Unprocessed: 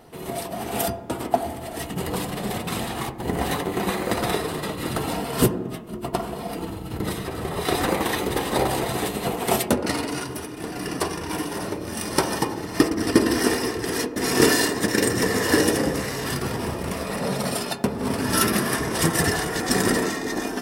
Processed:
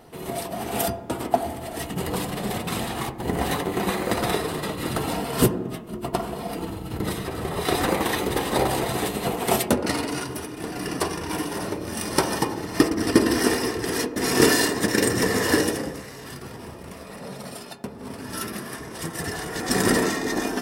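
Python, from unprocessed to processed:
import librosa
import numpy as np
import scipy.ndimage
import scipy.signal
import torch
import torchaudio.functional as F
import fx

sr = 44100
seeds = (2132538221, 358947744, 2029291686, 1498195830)

y = fx.gain(x, sr, db=fx.line((15.49, 0.0), (16.04, -11.0), (19.1, -11.0), (19.92, 1.5)))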